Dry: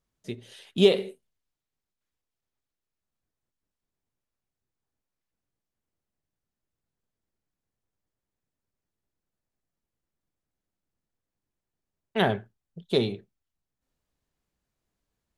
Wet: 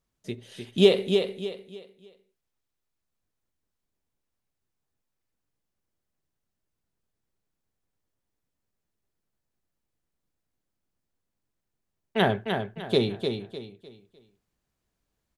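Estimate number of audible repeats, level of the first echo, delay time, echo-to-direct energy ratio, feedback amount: 3, -6.0 dB, 302 ms, -5.5 dB, 32%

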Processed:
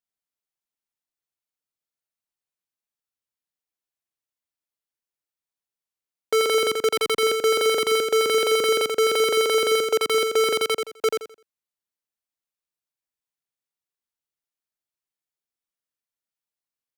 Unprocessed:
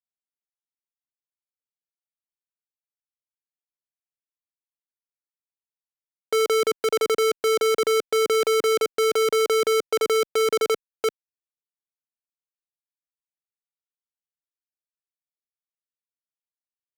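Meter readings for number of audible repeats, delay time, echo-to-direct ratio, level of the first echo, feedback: 3, 85 ms, -4.5 dB, -5.0 dB, 27%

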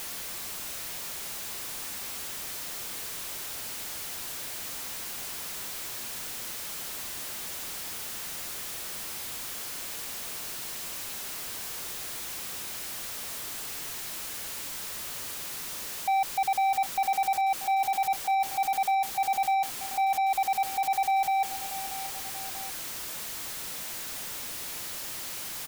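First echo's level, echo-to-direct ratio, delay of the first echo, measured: -14.0 dB, -12.5 dB, 635 ms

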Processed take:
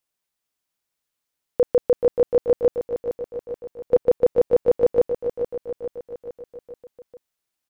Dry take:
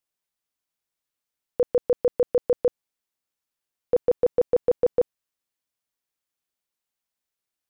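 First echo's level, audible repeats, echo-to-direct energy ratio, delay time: -8.5 dB, 5, -6.5 dB, 431 ms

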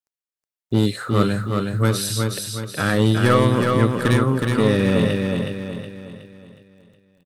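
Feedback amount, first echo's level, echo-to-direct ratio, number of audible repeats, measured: 44%, -4.0 dB, -3.0 dB, 5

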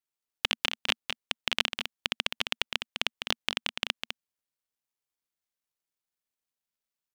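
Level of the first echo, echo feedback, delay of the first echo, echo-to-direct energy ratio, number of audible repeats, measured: -7.0 dB, no regular repeats, 204 ms, -7.0 dB, 1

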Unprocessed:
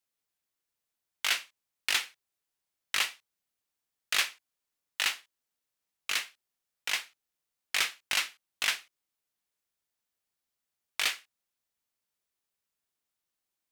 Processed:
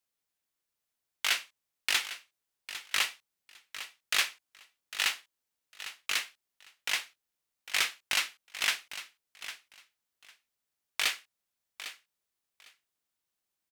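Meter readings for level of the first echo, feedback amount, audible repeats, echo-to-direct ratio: -13.0 dB, 17%, 2, -13.0 dB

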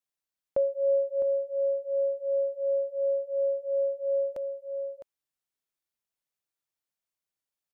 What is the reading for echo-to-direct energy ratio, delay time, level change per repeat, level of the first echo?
-9.5 dB, 658 ms, no regular repeats, -9.5 dB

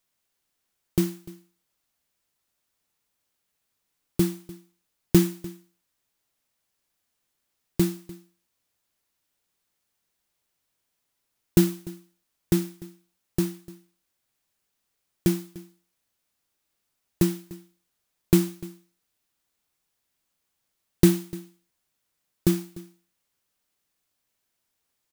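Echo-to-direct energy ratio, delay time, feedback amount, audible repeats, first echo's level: -20.0 dB, 297 ms, no regular repeats, 1, -20.0 dB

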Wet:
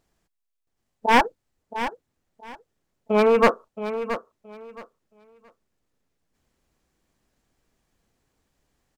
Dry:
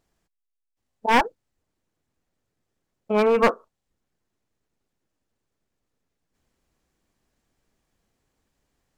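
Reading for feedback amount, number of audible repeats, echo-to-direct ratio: 21%, 2, -11.0 dB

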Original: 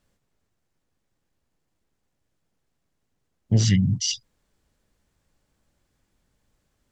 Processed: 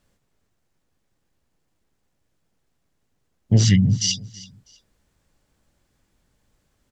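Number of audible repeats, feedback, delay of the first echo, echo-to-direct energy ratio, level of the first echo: 2, 27%, 325 ms, -19.0 dB, -19.5 dB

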